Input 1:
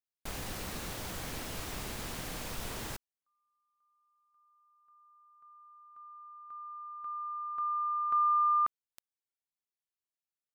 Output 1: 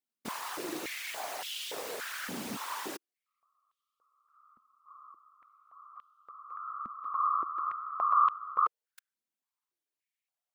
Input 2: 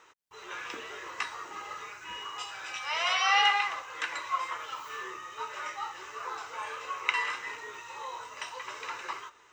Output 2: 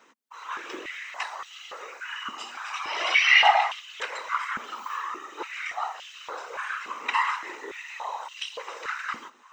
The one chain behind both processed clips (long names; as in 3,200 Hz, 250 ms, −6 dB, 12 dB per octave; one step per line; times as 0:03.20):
random phases in short frames
high-pass on a step sequencer 3.5 Hz 230–3,100 Hz